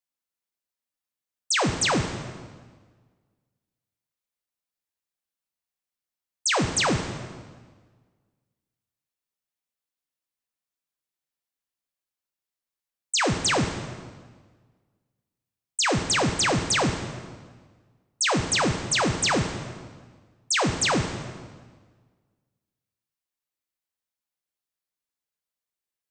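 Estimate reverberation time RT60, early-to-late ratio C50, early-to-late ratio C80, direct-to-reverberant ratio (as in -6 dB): 1.5 s, 7.0 dB, 8.5 dB, 4.5 dB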